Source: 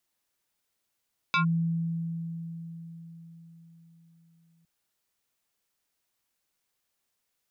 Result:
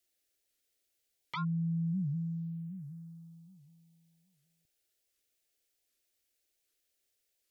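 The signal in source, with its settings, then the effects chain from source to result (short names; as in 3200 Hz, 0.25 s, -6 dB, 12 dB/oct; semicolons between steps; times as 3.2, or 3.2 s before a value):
FM tone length 3.31 s, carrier 166 Hz, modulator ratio 7.43, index 2.8, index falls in 0.11 s linear, decay 4.68 s, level -20.5 dB
limiter -29 dBFS; envelope phaser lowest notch 170 Hz, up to 2500 Hz, full sweep at -33.5 dBFS; record warp 78 rpm, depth 250 cents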